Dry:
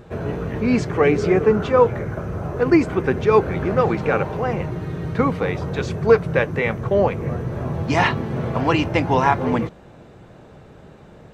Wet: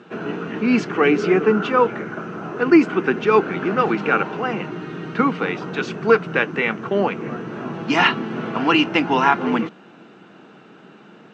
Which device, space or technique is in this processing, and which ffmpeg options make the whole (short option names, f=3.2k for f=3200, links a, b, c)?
television speaker: -af "highpass=f=190:w=0.5412,highpass=f=190:w=1.3066,equalizer=f=200:t=q:w=4:g=4,equalizer=f=310:t=q:w=4:g=4,equalizer=f=560:t=q:w=4:g=-8,equalizer=f=1.4k:t=q:w=4:g=8,equalizer=f=2.8k:t=q:w=4:g=9,lowpass=f=6.8k:w=0.5412,lowpass=f=6.8k:w=1.3066"